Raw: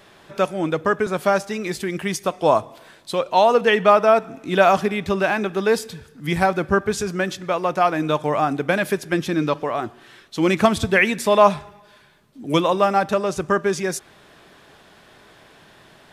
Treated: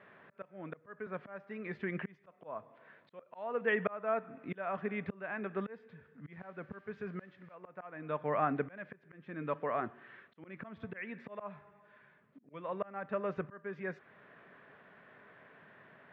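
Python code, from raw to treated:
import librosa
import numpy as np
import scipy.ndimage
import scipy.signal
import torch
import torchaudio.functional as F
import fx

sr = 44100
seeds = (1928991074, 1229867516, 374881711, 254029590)

y = fx.auto_swell(x, sr, attack_ms=725.0)
y = fx.dmg_noise_colour(y, sr, seeds[0], colour='blue', level_db=-48.0, at=(6.31, 7.54), fade=0.02)
y = fx.cabinet(y, sr, low_hz=150.0, low_slope=12, high_hz=2200.0, hz=(330.0, 810.0, 1800.0), db=(-8, -6, 3))
y = y * librosa.db_to_amplitude(-7.0)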